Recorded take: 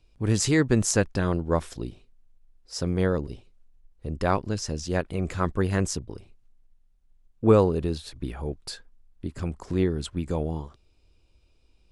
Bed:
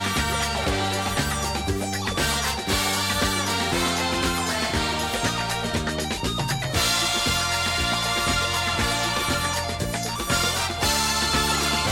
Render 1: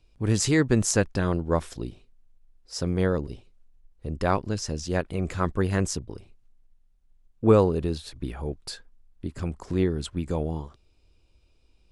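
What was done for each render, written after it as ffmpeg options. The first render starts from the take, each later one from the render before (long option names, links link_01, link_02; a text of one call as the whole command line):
ffmpeg -i in.wav -af anull out.wav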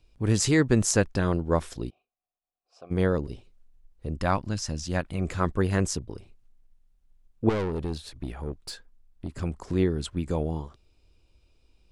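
ffmpeg -i in.wav -filter_complex "[0:a]asplit=3[link_01][link_02][link_03];[link_01]afade=type=out:start_time=1.89:duration=0.02[link_04];[link_02]asplit=3[link_05][link_06][link_07];[link_05]bandpass=frequency=730:width_type=q:width=8,volume=0dB[link_08];[link_06]bandpass=frequency=1090:width_type=q:width=8,volume=-6dB[link_09];[link_07]bandpass=frequency=2440:width_type=q:width=8,volume=-9dB[link_10];[link_08][link_09][link_10]amix=inputs=3:normalize=0,afade=type=in:start_time=1.89:duration=0.02,afade=type=out:start_time=2.9:duration=0.02[link_11];[link_03]afade=type=in:start_time=2.9:duration=0.02[link_12];[link_04][link_11][link_12]amix=inputs=3:normalize=0,asettb=1/sr,asplit=3[link_13][link_14][link_15];[link_13]atrim=end=4.174[link_16];[link_14]atrim=start=4.17:end=5.21,asetpts=PTS-STARTPTS,afade=type=in:duration=0.004:curve=qsin,afade=type=out:start_time=1.036:duration=0.004:curve=qsin,equalizer=frequency=420:width_type=o:width=0.54:gain=-10[link_17];[link_15]atrim=start=5.206[link_18];[link_16][link_17]acrossfade=duration=0.004:curve1=hsin:curve2=qsin[link_19];[link_19][link_18]acrossfade=duration=0.004:curve1=qsin:curve2=hsin,asettb=1/sr,asplit=3[link_20][link_21][link_22];[link_20]atrim=end=7.494[link_23];[link_21]atrim=start=7.49:end=9.3,asetpts=PTS-STARTPTS,afade=type=in:duration=0.004:curve=qsin,afade=type=out:start_time=1.806:duration=0.004:curve=qsin,aeval=exprs='(tanh(17.8*val(0)+0.45)-tanh(0.45))/17.8':channel_layout=same[link_24];[link_22]atrim=start=9.296[link_25];[link_23][link_24]acrossfade=duration=0.004:curve1=hsin:curve2=qsin[link_26];[link_26][link_25]acrossfade=duration=0.004:curve1=qsin:curve2=hsin" out.wav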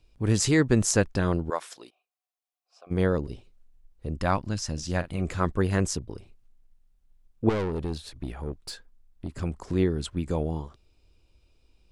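ffmpeg -i in.wav -filter_complex "[0:a]asettb=1/sr,asplit=3[link_01][link_02][link_03];[link_01]atrim=end=1.504[link_04];[link_02]atrim=start=1.5:end=2.87,asetpts=PTS-STARTPTS,afade=type=in:duration=0.004:curve=qsin,afade=type=out:start_time=1.366:duration=0.004:curve=qsin,highpass=720[link_05];[link_03]atrim=start=2.866[link_06];[link_04][link_05]acrossfade=duration=0.004:curve1=hsin:curve2=qsin[link_07];[link_07][link_06]acrossfade=duration=0.004:curve1=qsin:curve2=hsin,asettb=1/sr,asplit=3[link_08][link_09][link_10];[link_08]atrim=end=4.734[link_11];[link_09]atrim=start=4.73:end=5.22,asetpts=PTS-STARTPTS,afade=type=in:duration=0.004:curve=qsin,afade=type=out:start_time=0.486:duration=0.004:curve=qsin,asplit=2[link_12][link_13];[link_13]adelay=46,volume=-13dB[link_14];[link_12][link_14]amix=inputs=2:normalize=0,atrim=end_sample=21609[link_15];[link_10]atrim=start=5.216[link_16];[link_11][link_15]acrossfade=duration=0.004:curve1=hsin:curve2=qsin[link_17];[link_17][link_16]acrossfade=duration=0.004:curve1=qsin:curve2=hsin" out.wav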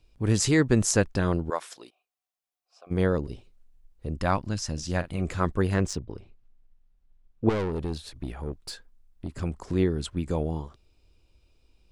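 ffmpeg -i in.wav -filter_complex "[0:a]asettb=1/sr,asplit=3[link_01][link_02][link_03];[link_01]atrim=end=5.744[link_04];[link_02]atrim=start=5.74:end=7.49,asetpts=PTS-STARTPTS,afade=type=in:duration=0.004:curve=qsin,afade=type=out:start_time=1.746:duration=0.004:curve=qsin,adynamicsmooth=sensitivity=3:basefreq=4800[link_05];[link_03]atrim=start=7.486[link_06];[link_04][link_05]acrossfade=duration=0.004:curve1=hsin:curve2=qsin[link_07];[link_07][link_06]acrossfade=duration=0.004:curve1=qsin:curve2=hsin" out.wav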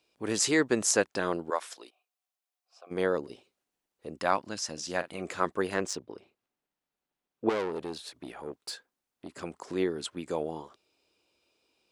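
ffmpeg -i in.wav -af "highpass=360" out.wav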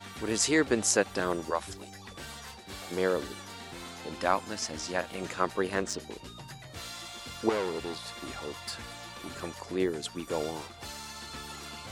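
ffmpeg -i in.wav -i bed.wav -filter_complex "[1:a]volume=-20dB[link_01];[0:a][link_01]amix=inputs=2:normalize=0" out.wav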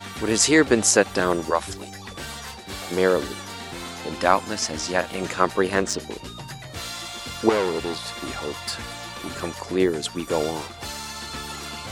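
ffmpeg -i in.wav -af "volume=8.5dB,alimiter=limit=-1dB:level=0:latency=1" out.wav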